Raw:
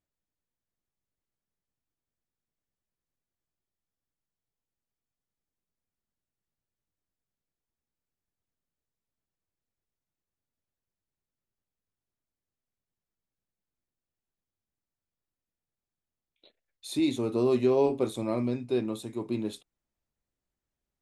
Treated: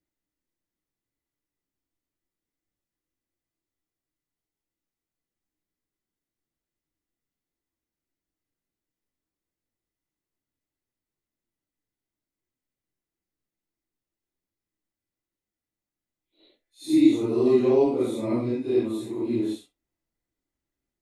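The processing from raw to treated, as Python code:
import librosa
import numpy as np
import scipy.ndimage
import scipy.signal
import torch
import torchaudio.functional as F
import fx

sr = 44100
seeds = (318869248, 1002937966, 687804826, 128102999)

y = fx.phase_scramble(x, sr, seeds[0], window_ms=200)
y = fx.small_body(y, sr, hz=(310.0, 2000.0), ring_ms=35, db=10)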